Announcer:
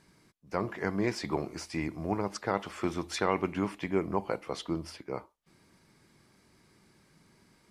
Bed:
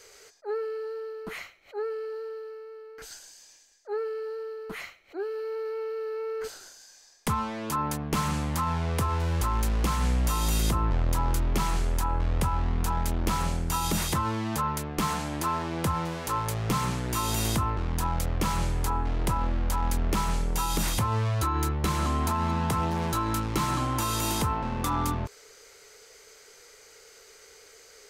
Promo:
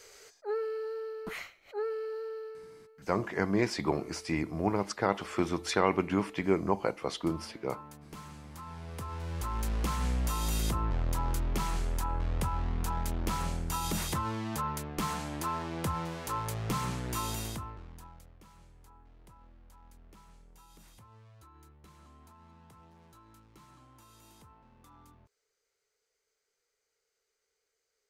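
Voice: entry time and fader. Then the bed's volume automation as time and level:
2.55 s, +2.0 dB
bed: 2.46 s -2 dB
3.20 s -19.5 dB
8.43 s -19.5 dB
9.73 s -5.5 dB
17.22 s -5.5 dB
18.40 s -30 dB

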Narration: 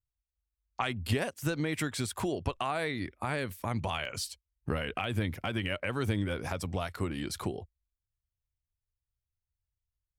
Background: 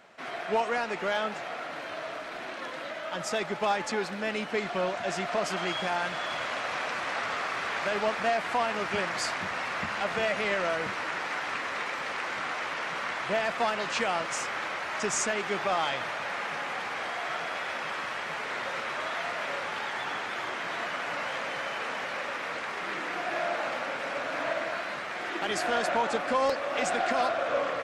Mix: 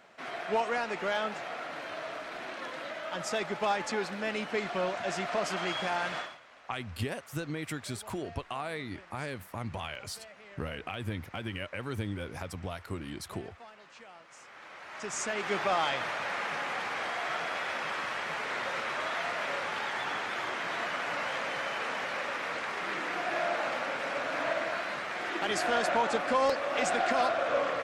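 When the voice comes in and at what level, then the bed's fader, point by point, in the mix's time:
5.90 s, -4.5 dB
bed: 6.19 s -2 dB
6.41 s -23 dB
14.25 s -23 dB
15.52 s -0.5 dB

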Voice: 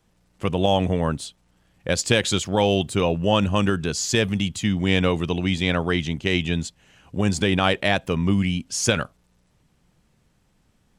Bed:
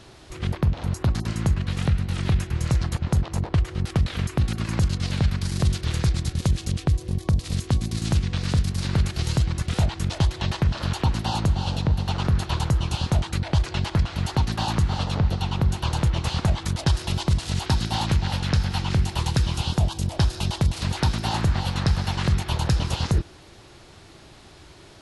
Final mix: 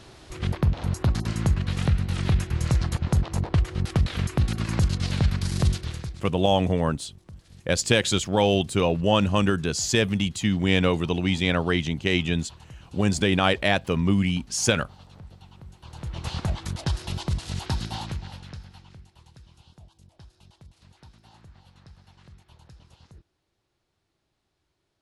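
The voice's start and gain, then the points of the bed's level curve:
5.80 s, -1.0 dB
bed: 5.70 s -0.5 dB
6.39 s -23.5 dB
15.76 s -23.5 dB
16.28 s -5.5 dB
17.84 s -5.5 dB
19.11 s -29 dB

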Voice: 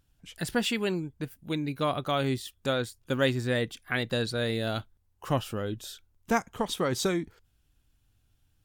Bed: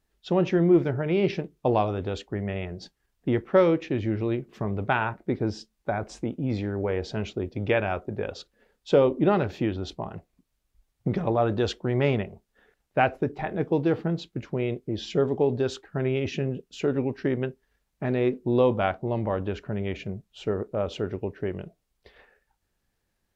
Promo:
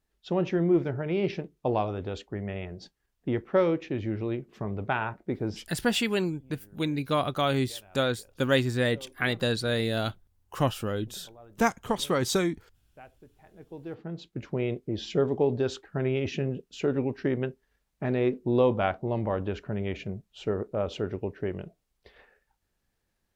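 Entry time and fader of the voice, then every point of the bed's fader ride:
5.30 s, +2.0 dB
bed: 5.58 s -4 dB
5.83 s -28 dB
13.38 s -28 dB
14.45 s -1.5 dB

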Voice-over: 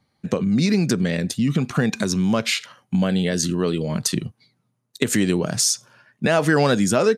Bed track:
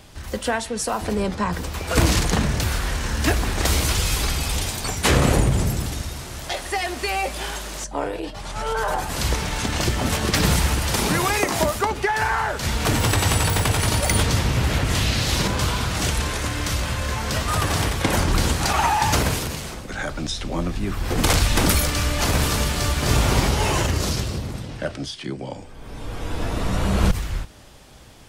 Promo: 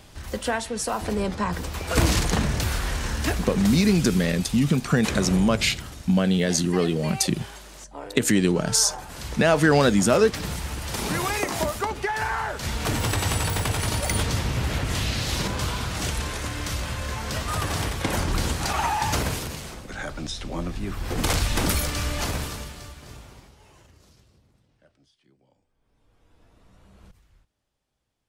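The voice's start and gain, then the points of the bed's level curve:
3.15 s, -0.5 dB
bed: 3.08 s -2.5 dB
3.85 s -12 dB
10.61 s -12 dB
11.17 s -5 dB
22.19 s -5 dB
23.55 s -33 dB

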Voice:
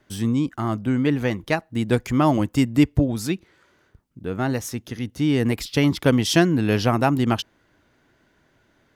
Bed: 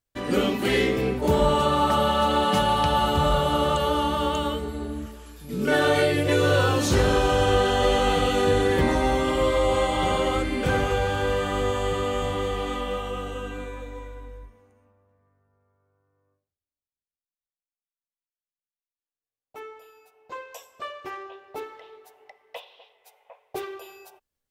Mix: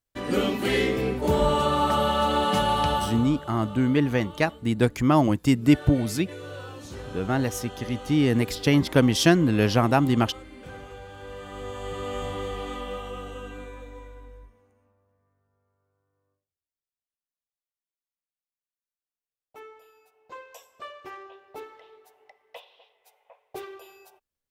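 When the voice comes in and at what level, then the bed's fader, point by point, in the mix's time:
2.90 s, -1.0 dB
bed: 2.91 s -1.5 dB
3.38 s -18.5 dB
11.08 s -18.5 dB
12.16 s -5 dB

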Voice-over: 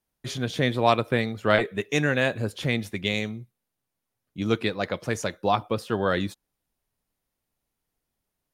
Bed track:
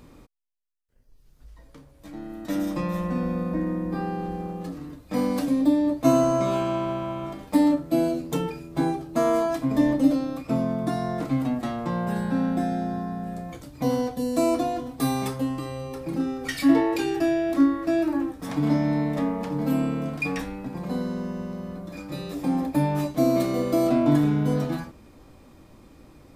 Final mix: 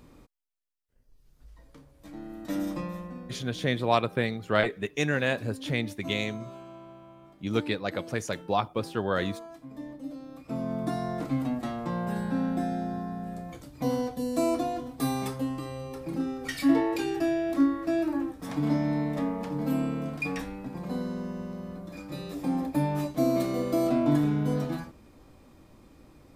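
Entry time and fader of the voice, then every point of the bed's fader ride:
3.05 s, -3.5 dB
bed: 2.71 s -4 dB
3.41 s -20 dB
10.03 s -20 dB
10.77 s -4 dB

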